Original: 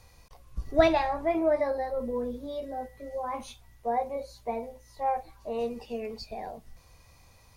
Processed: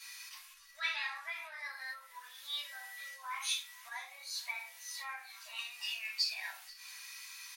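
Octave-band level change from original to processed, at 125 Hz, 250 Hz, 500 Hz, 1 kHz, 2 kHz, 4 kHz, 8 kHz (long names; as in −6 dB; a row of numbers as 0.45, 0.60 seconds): below −40 dB, below −40 dB, −36.0 dB, −16.5 dB, +1.5 dB, +8.0 dB, +10.5 dB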